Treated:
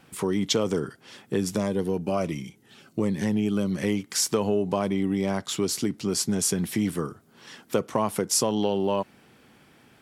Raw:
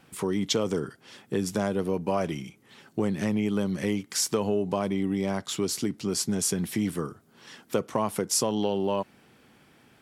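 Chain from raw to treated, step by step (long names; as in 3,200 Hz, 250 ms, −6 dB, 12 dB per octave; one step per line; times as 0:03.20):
0:01.56–0:03.71: phaser whose notches keep moving one way falling 1.4 Hz
level +2 dB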